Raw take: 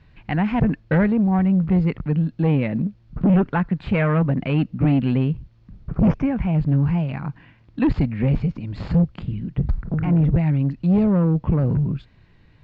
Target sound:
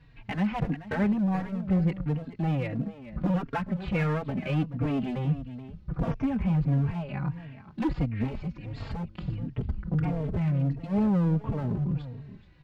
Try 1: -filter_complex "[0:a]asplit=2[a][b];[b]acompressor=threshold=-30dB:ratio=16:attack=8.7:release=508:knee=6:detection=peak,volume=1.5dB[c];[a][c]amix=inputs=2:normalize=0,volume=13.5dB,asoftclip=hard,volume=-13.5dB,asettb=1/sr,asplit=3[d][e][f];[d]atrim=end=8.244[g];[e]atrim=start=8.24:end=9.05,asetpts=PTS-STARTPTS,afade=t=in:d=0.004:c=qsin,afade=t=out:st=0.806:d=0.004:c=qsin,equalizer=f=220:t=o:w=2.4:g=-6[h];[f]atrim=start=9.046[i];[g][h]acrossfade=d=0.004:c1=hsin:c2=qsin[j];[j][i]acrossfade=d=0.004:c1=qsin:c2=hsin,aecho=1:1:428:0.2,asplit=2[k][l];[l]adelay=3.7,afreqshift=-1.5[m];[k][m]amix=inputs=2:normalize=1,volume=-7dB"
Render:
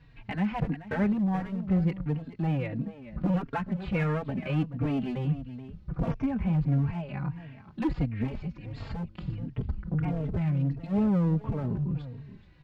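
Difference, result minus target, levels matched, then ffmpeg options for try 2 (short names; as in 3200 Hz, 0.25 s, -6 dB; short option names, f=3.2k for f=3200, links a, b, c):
compressor: peak gain reduction +6.5 dB
-filter_complex "[0:a]asplit=2[a][b];[b]acompressor=threshold=-23dB:ratio=16:attack=8.7:release=508:knee=6:detection=peak,volume=1.5dB[c];[a][c]amix=inputs=2:normalize=0,volume=13.5dB,asoftclip=hard,volume=-13.5dB,asettb=1/sr,asplit=3[d][e][f];[d]atrim=end=8.244[g];[e]atrim=start=8.24:end=9.05,asetpts=PTS-STARTPTS,afade=t=in:d=0.004:c=qsin,afade=t=out:st=0.806:d=0.004:c=qsin,equalizer=f=220:t=o:w=2.4:g=-6[h];[f]atrim=start=9.046[i];[g][h]acrossfade=d=0.004:c1=hsin:c2=qsin[j];[j][i]acrossfade=d=0.004:c1=qsin:c2=hsin,aecho=1:1:428:0.2,asplit=2[k][l];[l]adelay=3.7,afreqshift=-1.5[m];[k][m]amix=inputs=2:normalize=1,volume=-7dB"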